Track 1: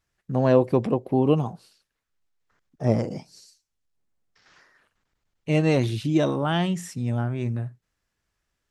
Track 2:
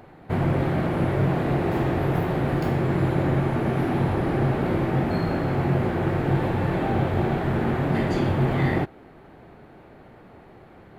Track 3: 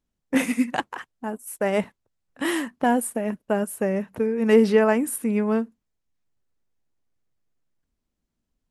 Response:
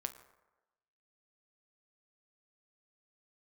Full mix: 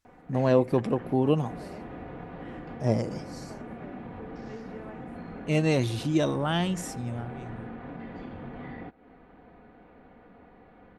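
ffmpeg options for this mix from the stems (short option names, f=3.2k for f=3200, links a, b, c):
-filter_complex "[0:a]equalizer=f=9.7k:w=0.33:g=5,volume=-3.5dB,afade=t=out:st=6.79:d=0.55:silence=0.266073,asplit=2[a][b];[1:a]aecho=1:1:4.1:0.61,adelay=50,volume=-6.5dB[c];[2:a]volume=-13.5dB[d];[b]apad=whole_len=487028[e];[c][e]sidechaincompress=threshold=-34dB:ratio=8:attack=16:release=208[f];[f][d]amix=inputs=2:normalize=0,lowpass=3k,acompressor=threshold=-38dB:ratio=6,volume=0dB[g];[a][g]amix=inputs=2:normalize=0"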